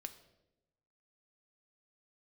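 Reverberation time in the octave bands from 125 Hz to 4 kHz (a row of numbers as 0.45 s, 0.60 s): 1.3 s, 1.2 s, 1.1 s, 0.80 s, 0.70 s, 0.65 s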